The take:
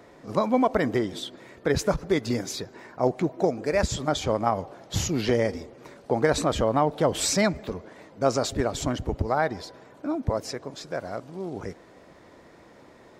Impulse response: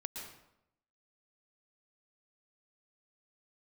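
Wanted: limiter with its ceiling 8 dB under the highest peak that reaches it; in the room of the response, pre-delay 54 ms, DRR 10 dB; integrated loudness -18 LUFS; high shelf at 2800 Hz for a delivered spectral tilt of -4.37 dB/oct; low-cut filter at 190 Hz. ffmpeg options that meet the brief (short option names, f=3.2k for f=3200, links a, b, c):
-filter_complex "[0:a]highpass=190,highshelf=f=2.8k:g=-4.5,alimiter=limit=-16dB:level=0:latency=1,asplit=2[a][b];[1:a]atrim=start_sample=2205,adelay=54[c];[b][c]afir=irnorm=-1:irlink=0,volume=-9dB[d];[a][d]amix=inputs=2:normalize=0,volume=11.5dB"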